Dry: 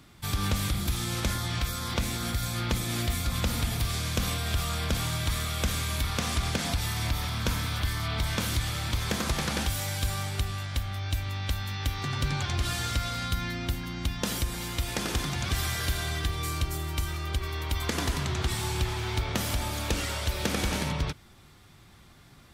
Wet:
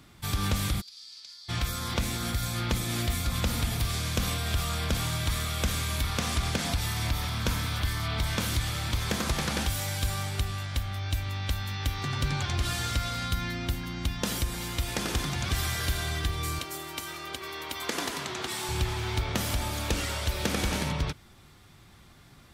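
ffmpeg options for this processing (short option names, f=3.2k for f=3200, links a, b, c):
-filter_complex "[0:a]asplit=3[a][b][c];[a]afade=t=out:st=0.8:d=0.02[d];[b]bandpass=f=4.7k:t=q:w=9.3,afade=t=in:st=0.8:d=0.02,afade=t=out:st=1.48:d=0.02[e];[c]afade=t=in:st=1.48:d=0.02[f];[d][e][f]amix=inputs=3:normalize=0,asettb=1/sr,asplit=3[g][h][i];[g]atrim=end=16.594[j];[h]atrim=start=16.59:end=18.69,asetpts=PTS-STARTPTS,afade=t=in:d=0.004:c=qsin,afade=t=out:st=2.096:d=0.004:c=qsin,highpass=280[k];[i]atrim=start=18.686[l];[j][k]acrossfade=d=0.004:c1=hsin:c2=qsin[m];[m][l]acrossfade=d=0.004:c1=qsin:c2=hsin"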